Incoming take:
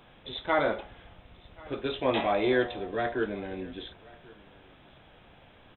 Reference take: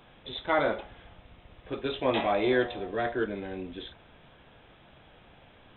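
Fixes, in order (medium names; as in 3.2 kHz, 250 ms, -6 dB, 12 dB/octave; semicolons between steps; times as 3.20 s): inverse comb 1084 ms -23.5 dB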